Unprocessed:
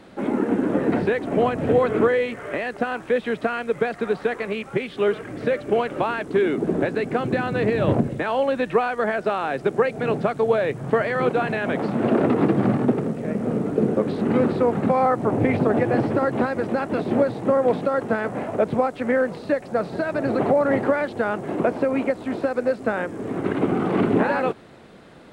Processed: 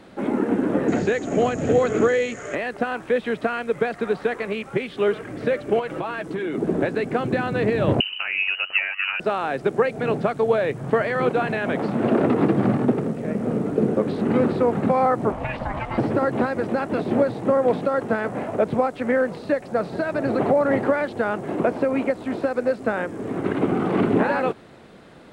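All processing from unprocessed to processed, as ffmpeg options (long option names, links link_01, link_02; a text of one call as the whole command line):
ffmpeg -i in.wav -filter_complex "[0:a]asettb=1/sr,asplit=3[link_01][link_02][link_03];[link_01]atrim=end=0.884[link_04];[link_02]atrim=start=0.88:end=2.55,asetpts=PTS-STARTPTS,afade=type=in:duration=0.004:curve=qsin,afade=type=out:start_time=1.666:duration=0.004:curve=qsin,lowpass=frequency=6800:width_type=q:width=14,equalizer=frequency=970:width_type=o:width=0.27:gain=-7[link_05];[link_03]atrim=start=2.546[link_06];[link_04][link_05]acrossfade=duration=0.004:curve1=hsin:curve2=qsin[link_07];[link_07][link_06]acrossfade=duration=0.004:curve1=qsin:curve2=hsin,asettb=1/sr,asplit=3[link_08][link_09][link_10];[link_08]atrim=end=5.794[link_11];[link_09]atrim=start=5.79:end=6.55,asetpts=PTS-STARTPTS,afade=type=in:duration=0.004:curve=qsin,afade=type=out:start_time=0.756:duration=0.004:curve=qsin,aecho=1:1:6.1:0.49,atrim=end_sample=33516,acompressor=threshold=-25dB:ratio=3:attack=3.2:release=140:knee=1:detection=peak[link_12];[link_10]atrim=start=6.546[link_13];[link_11][link_12]acrossfade=duration=0.004:curve1=hsin:curve2=qsin[link_14];[link_14][link_13]acrossfade=duration=0.004:curve1=qsin:curve2=hsin,asettb=1/sr,asplit=3[link_15][link_16][link_17];[link_15]atrim=end=8.004[link_18];[link_16]atrim=start=8:end=9.2,asetpts=PTS-STARTPTS,afade=type=in:duration=0.004:curve=qsin,afade=type=out:start_time=1.196:duration=0.004:curve=qsin,aeval=exprs='val(0)*sin(2*PI*48*n/s)':channel_layout=same,lowpass=frequency=2600:width_type=q:width=0.5098,lowpass=frequency=2600:width_type=q:width=0.6013,lowpass=frequency=2600:width_type=q:width=0.9,lowpass=frequency=2600:width_type=q:width=2.563,afreqshift=-3100[link_19];[link_17]atrim=start=9.196[link_20];[link_18][link_19]acrossfade=duration=0.004:curve1=hsin:curve2=qsin[link_21];[link_21][link_20]acrossfade=duration=0.004:curve1=qsin:curve2=hsin,asettb=1/sr,asplit=3[link_22][link_23][link_24];[link_22]atrim=end=15.324[link_25];[link_23]atrim=start=15.32:end=15.98,asetpts=PTS-STARTPTS,afade=type=in:duration=0.004:curve=qsin,afade=type=out:start_time=0.656:duration=0.004:curve=qsin,lowpass=frequency=2700:poles=1,tiltshelf=frequency=1300:gain=-7.5,aeval=exprs='val(0)*sin(2*PI*380*n/s)':channel_layout=same[link_26];[link_24]atrim=start=15.976[link_27];[link_25][link_26]acrossfade=duration=0.004:curve1=hsin:curve2=qsin[link_28];[link_28][link_27]acrossfade=duration=0.004:curve1=qsin:curve2=hsin" out.wav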